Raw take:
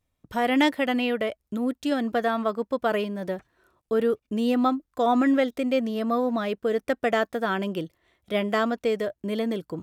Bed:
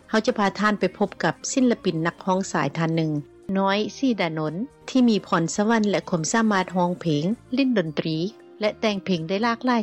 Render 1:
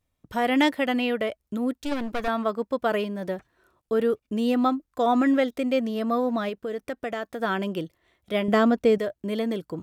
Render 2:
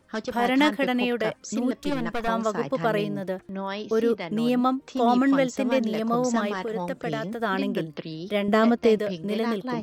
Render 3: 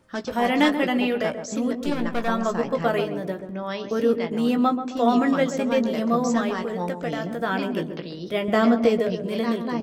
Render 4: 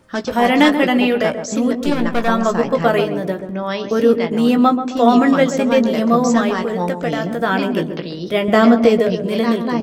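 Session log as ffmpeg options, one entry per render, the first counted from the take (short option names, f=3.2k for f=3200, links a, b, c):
-filter_complex "[0:a]asettb=1/sr,asplit=3[a][b][c];[a]atrim=end=1.734[d];[b]atrim=start=1.73:end=2.28,asetpts=PTS-STARTPTS,afade=t=in:d=0.004:c=qsin,afade=t=out:st=0.546:d=0.004:c=qsin,aeval=exprs='clip(val(0),-1,0.0141)':c=same[e];[c]atrim=start=2.276[f];[d][e]acrossfade=d=0.004:c1=hsin:c2=qsin[g];[g][f]acrossfade=d=0.004:c1=qsin:c2=hsin,asettb=1/sr,asplit=3[h][i][j];[h]atrim=end=6.494[k];[i]atrim=start=6.49:end=7.4,asetpts=PTS-STARTPTS,afade=t=in:d=0.004:c=qsin,afade=t=out:st=0.906:d=0.004:c=qsin,acompressor=threshold=-32dB:ratio=2:attack=3.2:release=140:knee=1:detection=peak[l];[j]atrim=start=7.396[m];[k][l]acrossfade=d=0.004:c1=hsin:c2=qsin[n];[n][m]acrossfade=d=0.004:c1=qsin:c2=hsin,asettb=1/sr,asplit=3[o][p][q];[o]atrim=end=8.484[r];[p]atrim=start=8.48:end=8.98,asetpts=PTS-STARTPTS,afade=t=in:d=0.004:c=qsin,afade=t=out:st=0.496:d=0.004:c=qsin,lowshelf=f=460:g=9.5[s];[q]atrim=start=8.976[t];[r][s]acrossfade=d=0.004:c1=hsin:c2=qsin[u];[u][t]acrossfade=d=0.004:c1=qsin:c2=hsin"
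-filter_complex "[1:a]volume=-10dB[a];[0:a][a]amix=inputs=2:normalize=0"
-filter_complex "[0:a]asplit=2[a][b];[b]adelay=17,volume=-7.5dB[c];[a][c]amix=inputs=2:normalize=0,asplit=2[d][e];[e]adelay=133,lowpass=f=930:p=1,volume=-7.5dB,asplit=2[f][g];[g]adelay=133,lowpass=f=930:p=1,volume=0.49,asplit=2[h][i];[i]adelay=133,lowpass=f=930:p=1,volume=0.49,asplit=2[j][k];[k]adelay=133,lowpass=f=930:p=1,volume=0.49,asplit=2[l][m];[m]adelay=133,lowpass=f=930:p=1,volume=0.49,asplit=2[n][o];[o]adelay=133,lowpass=f=930:p=1,volume=0.49[p];[f][h][j][l][n][p]amix=inputs=6:normalize=0[q];[d][q]amix=inputs=2:normalize=0"
-af "volume=7.5dB,alimiter=limit=-1dB:level=0:latency=1"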